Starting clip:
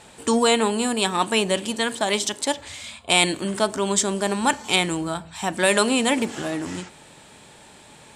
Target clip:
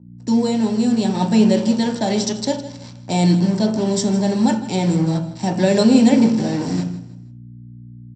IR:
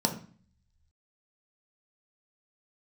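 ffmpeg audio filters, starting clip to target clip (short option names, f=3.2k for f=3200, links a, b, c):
-filter_complex "[0:a]equalizer=f=1.1k:w=2.2:g=-15,acrossover=split=300|1500|5200[a][b][c][d];[c]alimiter=limit=-19.5dB:level=0:latency=1[e];[a][b][e][d]amix=inputs=4:normalize=0,acrusher=bits=4:mix=0:aa=0.5,dynaudnorm=f=240:g=9:m=11.5dB,aeval=exprs='val(0)+0.01*(sin(2*PI*60*n/s)+sin(2*PI*2*60*n/s)/2+sin(2*PI*3*60*n/s)/3+sin(2*PI*4*60*n/s)/4+sin(2*PI*5*60*n/s)/5)':c=same,aecho=1:1:159|318|477:0.168|0.0588|0.0206[f];[1:a]atrim=start_sample=2205,afade=t=out:st=0.39:d=0.01,atrim=end_sample=17640[g];[f][g]afir=irnorm=-1:irlink=0,aresample=16000,aresample=44100,volume=-13dB"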